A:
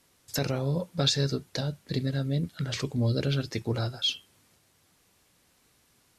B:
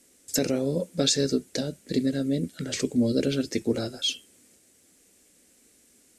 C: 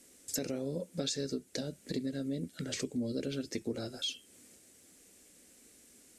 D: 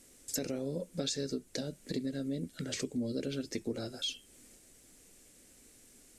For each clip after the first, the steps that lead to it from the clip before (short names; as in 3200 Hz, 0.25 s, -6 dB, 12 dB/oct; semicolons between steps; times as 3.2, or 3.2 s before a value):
graphic EQ 125/250/500/1000/2000/4000/8000 Hz -10/+10/+6/-10/+3/-3/+12 dB
compressor 2.5:1, threshold -38 dBFS, peak gain reduction 13 dB
added noise brown -68 dBFS